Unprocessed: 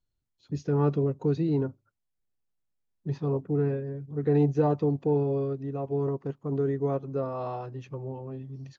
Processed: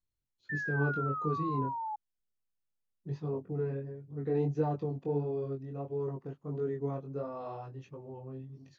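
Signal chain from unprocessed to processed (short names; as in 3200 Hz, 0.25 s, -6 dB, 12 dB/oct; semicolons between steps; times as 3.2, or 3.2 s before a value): chorus 1.5 Hz, delay 19 ms, depth 4.2 ms; painted sound fall, 0.49–1.96, 840–1800 Hz -32 dBFS; gain -4.5 dB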